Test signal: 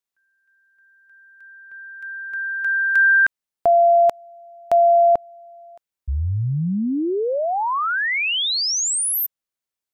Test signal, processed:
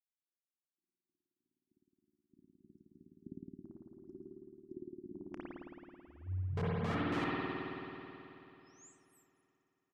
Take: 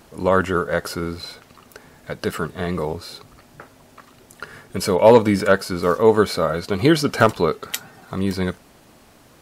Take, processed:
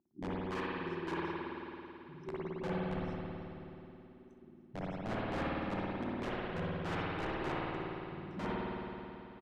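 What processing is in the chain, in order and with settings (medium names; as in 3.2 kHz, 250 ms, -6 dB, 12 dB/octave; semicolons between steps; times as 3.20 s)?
chunks repeated in reverse 181 ms, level -8.5 dB; spectral noise reduction 14 dB; FFT band-reject 390–5100 Hz; treble shelf 3.2 kHz -10 dB; reverse; compression 10:1, threshold -32 dBFS; reverse; wah-wah 3.3 Hz 230–2900 Hz, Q 2; integer overflow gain 39 dB; tape spacing loss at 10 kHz 21 dB; on a send: early reflections 31 ms -15.5 dB, 65 ms -15 dB; on the sum: spring tank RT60 3.1 s, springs 54 ms, chirp 45 ms, DRR -8 dB; trim +4.5 dB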